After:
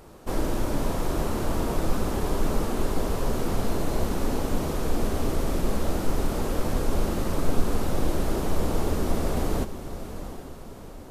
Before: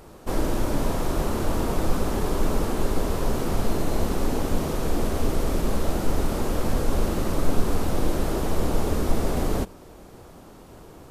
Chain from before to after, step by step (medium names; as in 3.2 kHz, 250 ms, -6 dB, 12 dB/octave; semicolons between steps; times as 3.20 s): echo that smears into a reverb 735 ms, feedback 45%, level -11 dB; trim -2 dB